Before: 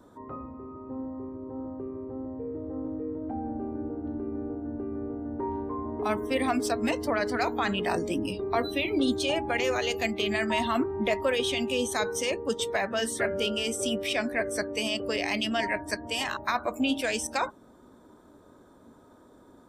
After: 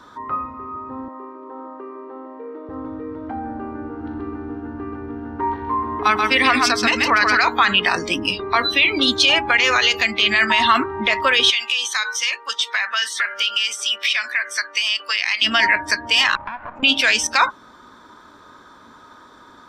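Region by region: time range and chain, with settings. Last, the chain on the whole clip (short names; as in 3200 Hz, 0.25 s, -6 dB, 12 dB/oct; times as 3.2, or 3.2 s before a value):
1.08–2.69 HPF 300 Hz 24 dB/oct + high shelf 5700 Hz -11 dB
3.87–7.38 notch 600 Hz, Q 6.8 + echo 0.132 s -5 dB
11.5–15.42 HPF 1200 Hz + compressor 5:1, threshold -34 dBFS
16.35–16.83 minimum comb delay 1.2 ms + LPF 1000 Hz + compressor 16:1, threshold -37 dBFS
whole clip: band shelf 2400 Hz +16 dB 3 oct; limiter -7.5 dBFS; gain +3 dB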